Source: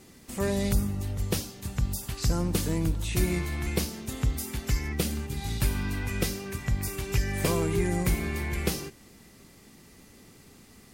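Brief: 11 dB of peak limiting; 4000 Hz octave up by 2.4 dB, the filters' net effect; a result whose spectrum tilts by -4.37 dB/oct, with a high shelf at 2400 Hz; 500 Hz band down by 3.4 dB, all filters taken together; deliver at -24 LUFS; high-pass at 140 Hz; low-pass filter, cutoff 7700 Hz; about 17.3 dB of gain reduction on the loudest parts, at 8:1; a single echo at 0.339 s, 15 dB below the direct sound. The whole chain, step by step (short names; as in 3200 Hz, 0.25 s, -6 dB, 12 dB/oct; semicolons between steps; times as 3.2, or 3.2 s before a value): HPF 140 Hz; LPF 7700 Hz; bell 500 Hz -4.5 dB; high shelf 2400 Hz -5.5 dB; bell 4000 Hz +8.5 dB; compressor 8:1, threshold -44 dBFS; limiter -39 dBFS; echo 0.339 s -15 dB; gain +25 dB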